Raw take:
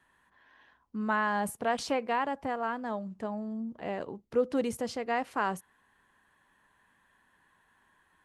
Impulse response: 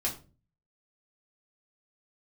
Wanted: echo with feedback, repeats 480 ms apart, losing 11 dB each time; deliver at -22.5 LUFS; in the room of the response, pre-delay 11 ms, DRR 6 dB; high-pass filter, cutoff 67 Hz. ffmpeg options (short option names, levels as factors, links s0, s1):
-filter_complex "[0:a]highpass=67,aecho=1:1:480|960|1440:0.282|0.0789|0.0221,asplit=2[s0][s1];[1:a]atrim=start_sample=2205,adelay=11[s2];[s1][s2]afir=irnorm=-1:irlink=0,volume=0.282[s3];[s0][s3]amix=inputs=2:normalize=0,volume=2.82"